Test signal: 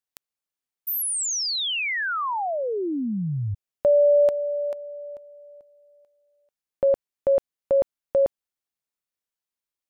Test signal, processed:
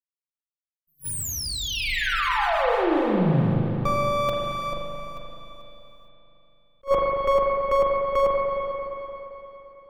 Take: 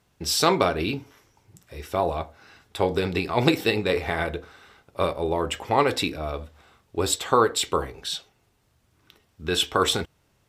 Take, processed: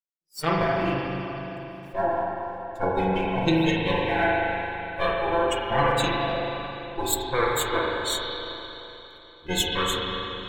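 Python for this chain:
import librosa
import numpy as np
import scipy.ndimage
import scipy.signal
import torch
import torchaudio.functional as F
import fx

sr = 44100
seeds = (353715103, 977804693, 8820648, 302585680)

y = fx.lower_of_two(x, sr, delay_ms=5.9)
y = fx.gate_hold(y, sr, open_db=-50.0, close_db=-59.0, hold_ms=17.0, range_db=-28, attack_ms=4.7, release_ms=29.0)
y = fx.high_shelf(y, sr, hz=8900.0, db=5.5)
y = fx.rider(y, sr, range_db=5, speed_s=0.5)
y = fx.noise_reduce_blind(y, sr, reduce_db=21)
y = fx.rev_spring(y, sr, rt60_s=3.5, pass_ms=(37, 43), chirp_ms=40, drr_db=-3.5)
y = fx.attack_slew(y, sr, db_per_s=420.0)
y = y * librosa.db_to_amplitude(-1.0)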